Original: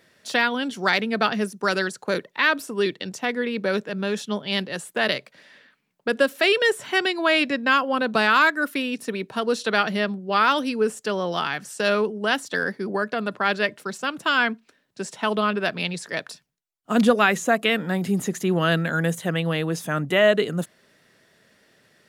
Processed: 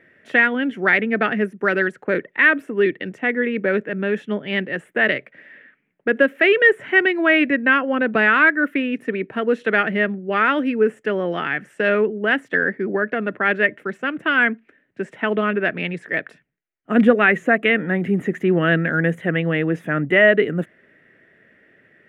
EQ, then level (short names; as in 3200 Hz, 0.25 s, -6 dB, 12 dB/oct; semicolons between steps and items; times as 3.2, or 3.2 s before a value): EQ curve 200 Hz 0 dB, 310 Hz +5 dB, 650 Hz -1 dB, 1000 Hz -8 dB, 1900 Hz +7 dB, 3100 Hz -7 dB, 4400 Hz -25 dB, 8600 Hz -22 dB; +2.5 dB